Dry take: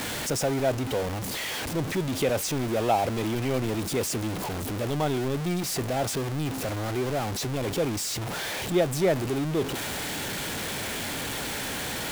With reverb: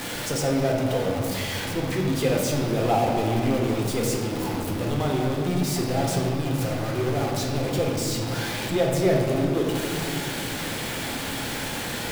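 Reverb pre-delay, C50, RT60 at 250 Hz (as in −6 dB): 4 ms, 1.5 dB, 3.7 s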